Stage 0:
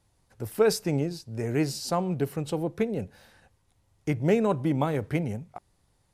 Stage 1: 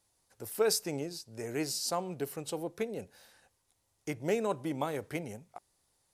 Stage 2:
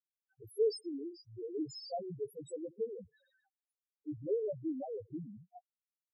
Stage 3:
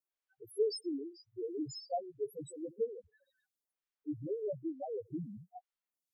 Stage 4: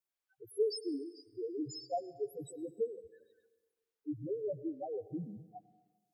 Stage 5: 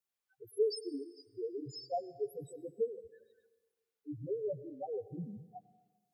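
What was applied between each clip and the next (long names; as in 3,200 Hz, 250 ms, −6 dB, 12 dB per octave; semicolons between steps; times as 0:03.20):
bass and treble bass −10 dB, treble +8 dB; level −5.5 dB
bit-depth reduction 10 bits, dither none; spectral peaks only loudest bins 1; level +4 dB
tape wow and flutter 24 cents; phaser with staggered stages 1.1 Hz; level +4 dB
dense smooth reverb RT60 1.4 s, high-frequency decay 0.9×, pre-delay 85 ms, DRR 17.5 dB
notch comb filter 320 Hz; level +1 dB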